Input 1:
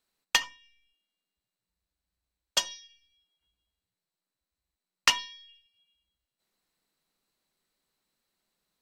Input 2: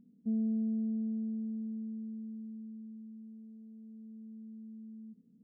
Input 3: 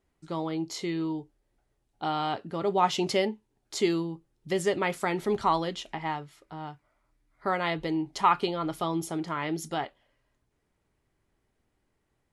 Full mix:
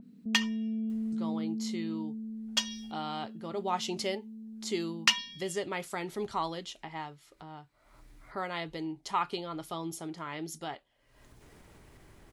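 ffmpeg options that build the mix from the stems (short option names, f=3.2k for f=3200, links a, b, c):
-filter_complex "[0:a]equalizer=f=2.2k:w=0.4:g=11,volume=-13.5dB[a];[1:a]alimiter=level_in=8.5dB:limit=-24dB:level=0:latency=1,volume=-8.5dB,volume=3dB[b];[2:a]acompressor=mode=upward:threshold=-38dB:ratio=2.5,adelay=900,volume=-8dB[c];[a][b][c]amix=inputs=3:normalize=0,acompressor=mode=upward:threshold=-46dB:ratio=2.5,adynamicequalizer=threshold=0.00282:dfrequency=3100:dqfactor=0.7:tfrequency=3100:tqfactor=0.7:attack=5:release=100:ratio=0.375:range=3:mode=boostabove:tftype=highshelf"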